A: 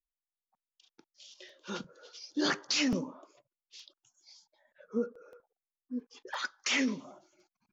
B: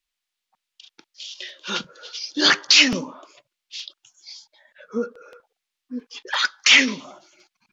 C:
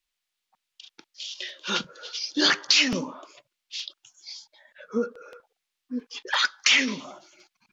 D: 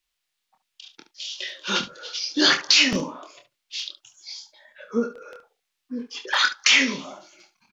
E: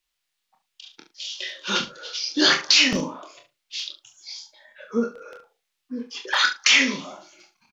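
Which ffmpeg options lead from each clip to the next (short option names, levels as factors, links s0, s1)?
-af "equalizer=f=3100:w=0.45:g=14,volume=1.78"
-af "acompressor=threshold=0.112:ratio=2.5"
-af "aecho=1:1:26|71:0.501|0.224,volume=1.26"
-filter_complex "[0:a]asplit=2[s0][s1];[s1]adelay=39,volume=0.316[s2];[s0][s2]amix=inputs=2:normalize=0"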